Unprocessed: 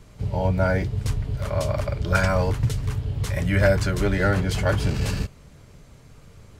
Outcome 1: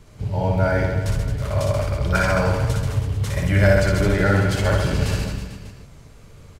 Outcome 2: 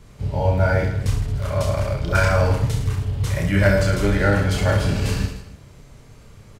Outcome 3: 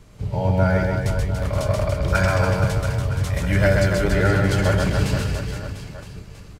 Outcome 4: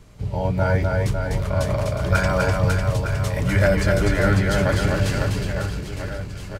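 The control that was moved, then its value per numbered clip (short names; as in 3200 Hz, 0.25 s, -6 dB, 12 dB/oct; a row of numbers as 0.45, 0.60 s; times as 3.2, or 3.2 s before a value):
reverse bouncing-ball echo, first gap: 60, 30, 130, 250 ms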